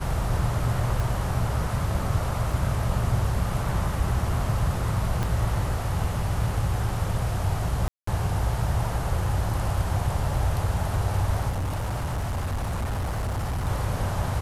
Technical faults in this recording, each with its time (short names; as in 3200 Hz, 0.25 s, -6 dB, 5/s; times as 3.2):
1 pop
2.52 gap 2.9 ms
5.23 pop
7.88–8.07 gap 0.194 s
11.49–13.68 clipped -24.5 dBFS